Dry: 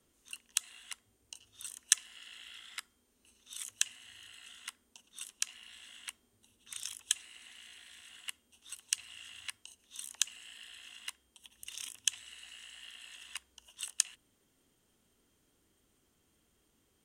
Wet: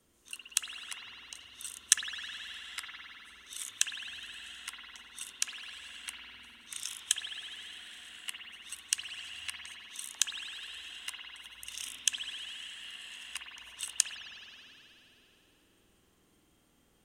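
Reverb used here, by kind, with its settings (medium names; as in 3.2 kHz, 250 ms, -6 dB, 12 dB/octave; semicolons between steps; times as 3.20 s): spring tank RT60 3.2 s, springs 50 ms, chirp 40 ms, DRR -1 dB; trim +2 dB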